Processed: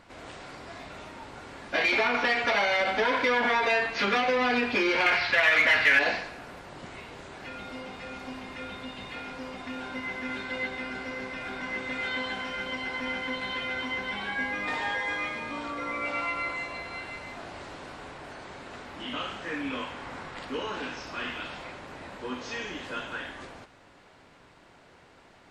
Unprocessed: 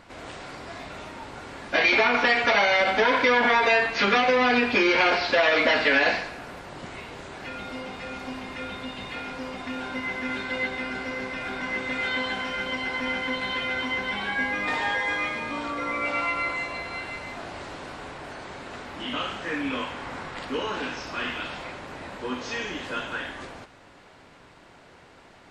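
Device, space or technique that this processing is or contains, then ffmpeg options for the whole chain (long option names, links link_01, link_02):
parallel distortion: -filter_complex "[0:a]asettb=1/sr,asplit=3[link_01][link_02][link_03];[link_01]atrim=end=5.064[link_04];[link_02]atrim=start=5.06:end=5.99,asetpts=PTS-STARTPTS,afade=type=in:duration=0.004:curve=qsin,afade=type=out:start_time=0.926:duration=0.004:curve=qsin,equalizer=frequency=125:width_type=o:width=1:gain=7,equalizer=frequency=250:width_type=o:width=1:gain=-7,equalizer=frequency=500:width_type=o:width=1:gain=-5,equalizer=frequency=2000:width_type=o:width=1:gain=9,equalizer=frequency=8000:width_type=o:width=1:gain=-4[link_05];[link_03]atrim=start=5.986[link_06];[link_04][link_05]acrossfade=duration=0.004:curve1=hsin:curve2=qsin[link_07];[link_07][link_06]acrossfade=duration=0.004:curve1=qsin:curve2=hsin,asplit=2[link_08][link_09];[link_09]asoftclip=type=hard:threshold=-18dB,volume=-10dB[link_10];[link_08][link_10]amix=inputs=2:normalize=0,volume=-6.5dB"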